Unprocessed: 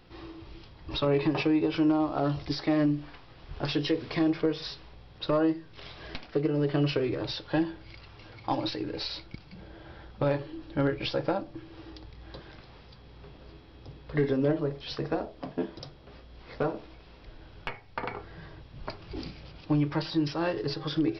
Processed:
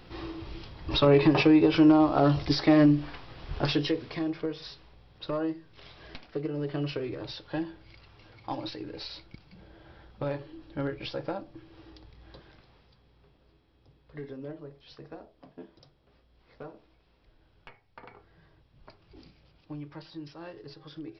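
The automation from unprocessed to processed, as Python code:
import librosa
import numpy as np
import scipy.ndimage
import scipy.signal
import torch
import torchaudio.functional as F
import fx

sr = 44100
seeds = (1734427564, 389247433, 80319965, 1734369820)

y = fx.gain(x, sr, db=fx.line((3.55, 5.5), (4.19, -5.5), (12.29, -5.5), (13.42, -14.5)))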